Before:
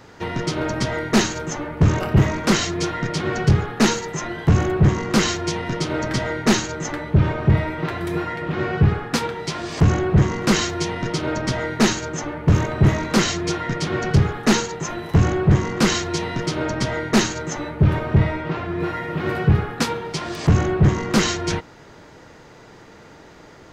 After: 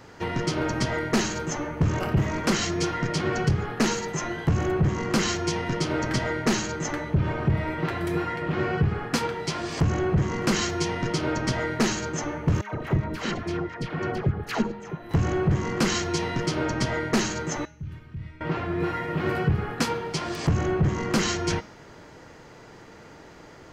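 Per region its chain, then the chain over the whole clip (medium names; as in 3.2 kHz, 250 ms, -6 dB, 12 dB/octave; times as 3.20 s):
12.61–15.11 s: peaking EQ 6.8 kHz -13 dB 1.4 oct + level held to a coarse grid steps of 13 dB + phase dispersion lows, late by 121 ms, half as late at 920 Hz
17.65–18.41 s: amplifier tone stack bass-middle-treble 6-0-2 + compression 4:1, threshold -29 dBFS
whole clip: band-stop 3.7 kHz, Q 16; de-hum 207.3 Hz, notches 32; compression, threshold -17 dBFS; trim -2 dB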